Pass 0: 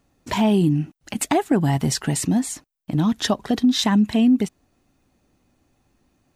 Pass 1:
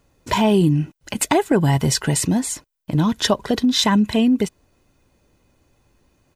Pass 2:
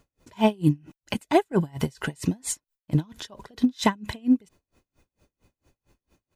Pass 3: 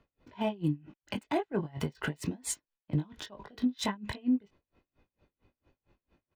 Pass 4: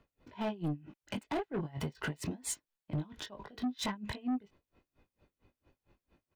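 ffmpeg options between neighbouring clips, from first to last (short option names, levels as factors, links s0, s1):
-af "aecho=1:1:2:0.38,volume=1.5"
-af "aeval=exprs='val(0)*pow(10,-35*(0.5-0.5*cos(2*PI*4.4*n/s))/20)':c=same"
-filter_complex "[0:a]acrossover=split=160|4200[s0][s1][s2];[s1]asplit=2[s3][s4];[s4]adelay=20,volume=0.631[s5];[s3][s5]amix=inputs=2:normalize=0[s6];[s2]aeval=exprs='sgn(val(0))*max(abs(val(0))-0.00335,0)':c=same[s7];[s0][s6][s7]amix=inputs=3:normalize=0,alimiter=limit=0.168:level=0:latency=1:release=127,volume=0.596"
-af "asoftclip=type=tanh:threshold=0.0355"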